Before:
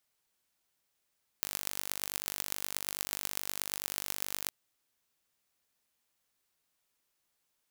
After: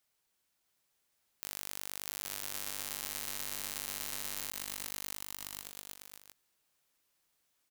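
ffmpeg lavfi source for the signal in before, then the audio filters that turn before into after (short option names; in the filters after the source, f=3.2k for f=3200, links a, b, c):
-f lavfi -i "aevalsrc='0.596*eq(mod(n,893),0)*(0.5+0.5*eq(mod(n,5358),0))':d=3.07:s=44100"
-filter_complex "[0:a]asplit=2[a][b];[b]aecho=0:1:660|1122|1445|1672|1830:0.631|0.398|0.251|0.158|0.1[c];[a][c]amix=inputs=2:normalize=0,alimiter=limit=-13.5dB:level=0:latency=1:release=37"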